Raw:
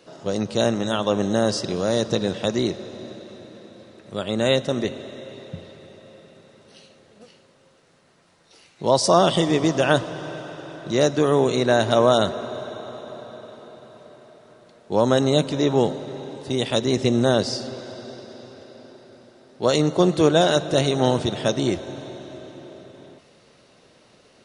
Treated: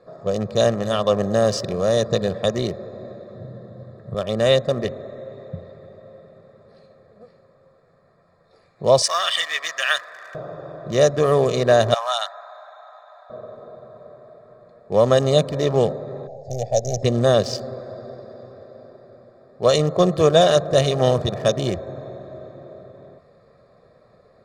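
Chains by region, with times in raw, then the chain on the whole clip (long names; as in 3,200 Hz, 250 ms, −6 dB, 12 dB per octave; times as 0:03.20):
0:03.35–0:04.15: parametric band 130 Hz +14.5 dB 0.91 octaves + notch filter 2,400 Hz, Q 6
0:09.02–0:10.35: mu-law and A-law mismatch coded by mu + high-pass with resonance 1,800 Hz, resonance Q 2.6
0:11.94–0:13.30: elliptic high-pass filter 800 Hz, stop band 60 dB + notch filter 1,100 Hz, Q 9.6
0:16.27–0:17.03: gain on one half-wave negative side −3 dB + drawn EQ curve 120 Hz 0 dB, 320 Hz −15 dB, 540 Hz +1 dB, 770 Hz +6 dB, 1,100 Hz −27 dB, 2,400 Hz −13 dB, 3,600 Hz −15 dB, 6,100 Hz +10 dB, 8,900 Hz −15 dB
whole clip: adaptive Wiener filter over 15 samples; comb filter 1.7 ms, depth 62%; level +1 dB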